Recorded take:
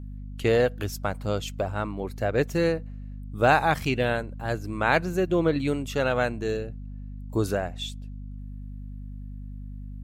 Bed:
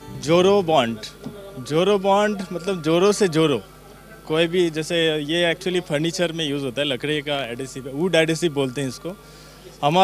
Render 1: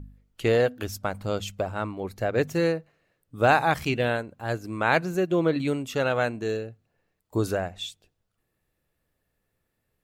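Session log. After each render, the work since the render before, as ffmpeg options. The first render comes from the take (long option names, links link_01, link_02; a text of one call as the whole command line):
ffmpeg -i in.wav -af "bandreject=frequency=50:width_type=h:width=4,bandreject=frequency=100:width_type=h:width=4,bandreject=frequency=150:width_type=h:width=4,bandreject=frequency=200:width_type=h:width=4,bandreject=frequency=250:width_type=h:width=4" out.wav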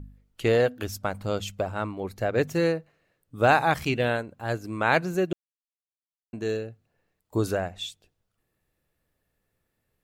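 ffmpeg -i in.wav -filter_complex "[0:a]asplit=3[link_01][link_02][link_03];[link_01]atrim=end=5.33,asetpts=PTS-STARTPTS,afade=type=out:start_time=5.326:duration=0.004:curve=hsin[link_04];[link_02]atrim=start=5.33:end=6.33,asetpts=PTS-STARTPTS,volume=0[link_05];[link_03]atrim=start=6.33,asetpts=PTS-STARTPTS,afade=type=in:duration=0.004:curve=hsin[link_06];[link_04][link_05][link_06]concat=n=3:v=0:a=1" out.wav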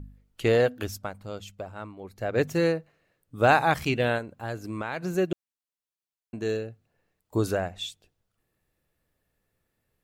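ffmpeg -i in.wav -filter_complex "[0:a]asettb=1/sr,asplit=3[link_01][link_02][link_03];[link_01]atrim=end=4.184[link_04];[link_02]atrim=start=4.18:end=5.05,asetpts=PTS-STARTPTS,afade=type=in:duration=0.004:curve=qsin,afade=type=out:start_time=0.866:duration=0.004:curve=qsin,acompressor=threshold=-28dB:ratio=6:attack=3.2:release=140:knee=1:detection=peak[link_05];[link_03]atrim=start=5.046[link_06];[link_04][link_05]acrossfade=duration=0.004:curve1=hsin:curve2=qsin[link_07];[link_07][link_06]acrossfade=duration=0.004:curve1=qsin:curve2=hsin,asplit=3[link_08][link_09][link_10];[link_08]atrim=end=1.14,asetpts=PTS-STARTPTS,afade=type=out:start_time=0.85:duration=0.29:silence=0.354813[link_11];[link_09]atrim=start=1.14:end=2.12,asetpts=PTS-STARTPTS,volume=-9dB[link_12];[link_10]atrim=start=2.12,asetpts=PTS-STARTPTS,afade=type=in:duration=0.29:silence=0.354813[link_13];[link_11][link_12][link_13]concat=n=3:v=0:a=1" out.wav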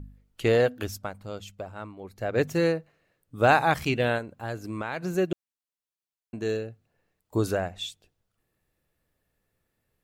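ffmpeg -i in.wav -af anull out.wav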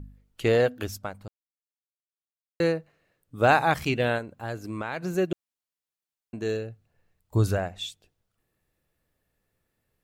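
ffmpeg -i in.wav -filter_complex "[0:a]asettb=1/sr,asplit=3[link_01][link_02][link_03];[link_01]atrim=end=6.414[link_04];[link_02]atrim=start=6.41:end=7.58,asetpts=PTS-STARTPTS,afade=type=in:duration=0.004:curve=qsin,afade=type=out:start_time=1.166:duration=0.004:curve=qsin,asubboost=boost=9.5:cutoff=150[link_05];[link_03]atrim=start=7.576[link_06];[link_04][link_05]acrossfade=duration=0.004:curve1=hsin:curve2=qsin[link_07];[link_07][link_06]acrossfade=duration=0.004:curve1=qsin:curve2=hsin,asplit=3[link_08][link_09][link_10];[link_08]atrim=end=1.28,asetpts=PTS-STARTPTS,afade=type=out:start_time=1.276:duration=0.004:curve=hsin[link_11];[link_09]atrim=start=1.28:end=2.6,asetpts=PTS-STARTPTS,volume=0[link_12];[link_10]atrim=start=2.6,asetpts=PTS-STARTPTS,afade=type=in:duration=0.004:curve=hsin[link_13];[link_11][link_12][link_13]concat=n=3:v=0:a=1" out.wav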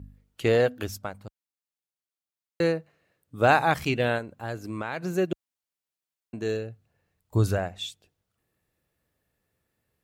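ffmpeg -i in.wav -af "highpass=46" out.wav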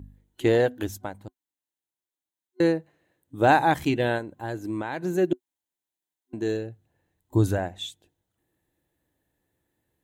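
ffmpeg -i in.wav -af "superequalizer=6b=2.24:9b=1.41:10b=0.562:12b=0.631:14b=0.501" out.wav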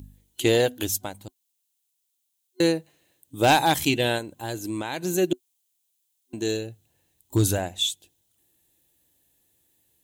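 ffmpeg -i in.wav -af "volume=11.5dB,asoftclip=hard,volume=-11.5dB,aexciter=amount=2.2:drive=9.1:freq=2500" out.wav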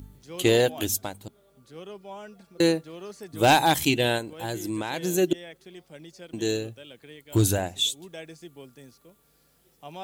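ffmpeg -i in.wav -i bed.wav -filter_complex "[1:a]volume=-23.5dB[link_01];[0:a][link_01]amix=inputs=2:normalize=0" out.wav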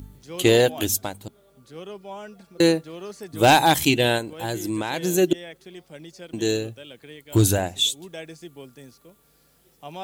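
ffmpeg -i in.wav -af "volume=3.5dB,alimiter=limit=-3dB:level=0:latency=1" out.wav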